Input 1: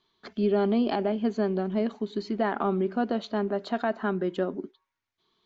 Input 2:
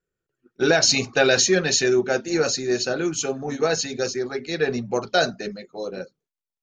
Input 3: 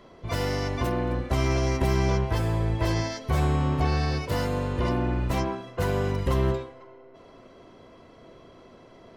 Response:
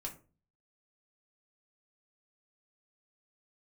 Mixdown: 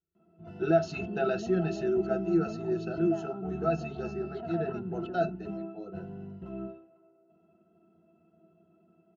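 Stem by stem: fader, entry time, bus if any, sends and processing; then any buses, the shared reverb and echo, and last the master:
−3.5 dB, 0.70 s, no send, background raised ahead of every attack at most 42 dB per second
+1.0 dB, 0.00 s, no send, no processing
−8.0 dB, 0.15 s, no send, high-pass filter 160 Hz 12 dB per octave; parametric band 210 Hz +11.5 dB 0.7 octaves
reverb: not used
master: resonances in every octave E, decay 0.1 s

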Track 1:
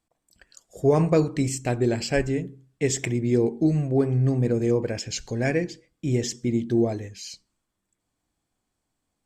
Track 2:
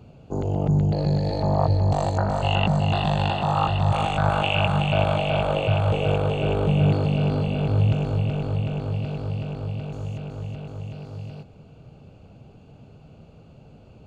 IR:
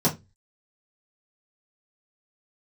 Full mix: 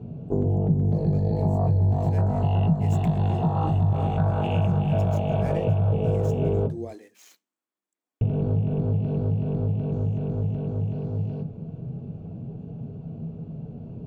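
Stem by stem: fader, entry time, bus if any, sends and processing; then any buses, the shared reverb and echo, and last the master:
0:01.81 −19 dB → 0:02.49 −9.5 dB, 0.00 s, no send, running median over 9 samples; high-pass filter 250 Hz 24 dB per octave; high-shelf EQ 3,900 Hz +8 dB
−3.5 dB, 0.00 s, muted 0:06.67–0:08.21, send −16.5 dB, low-pass filter 6,600 Hz 12 dB per octave; tilt shelving filter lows +8.5 dB, about 900 Hz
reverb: on, RT60 0.20 s, pre-delay 3 ms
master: downward compressor 3 to 1, threshold −22 dBFS, peak gain reduction 13.5 dB

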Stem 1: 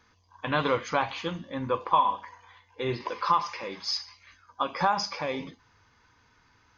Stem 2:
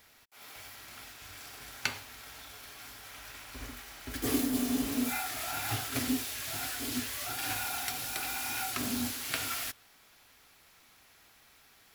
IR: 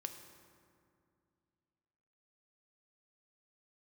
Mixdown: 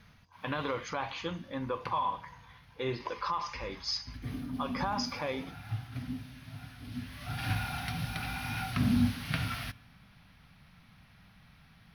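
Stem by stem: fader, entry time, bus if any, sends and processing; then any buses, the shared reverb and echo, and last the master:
−3.5 dB, 0.00 s, no send, brickwall limiter −20 dBFS, peak gain reduction 8 dB
−0.5 dB, 0.00 s, send −11.5 dB, moving average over 6 samples; low shelf with overshoot 250 Hz +12 dB, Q 3; automatic ducking −24 dB, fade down 1.25 s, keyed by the first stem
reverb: on, RT60 2.4 s, pre-delay 3 ms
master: no processing

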